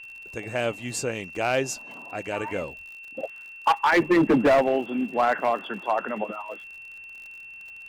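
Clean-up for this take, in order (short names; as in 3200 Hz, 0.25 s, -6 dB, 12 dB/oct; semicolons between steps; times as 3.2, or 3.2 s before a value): clip repair -14.5 dBFS; de-click; notch 2700 Hz, Q 30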